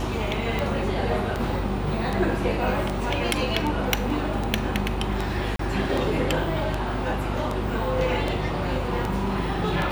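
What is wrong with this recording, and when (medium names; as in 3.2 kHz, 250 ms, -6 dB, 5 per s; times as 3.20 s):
buzz 50 Hz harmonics 16 -30 dBFS
tick 78 rpm
5.56–5.59 s: dropout 33 ms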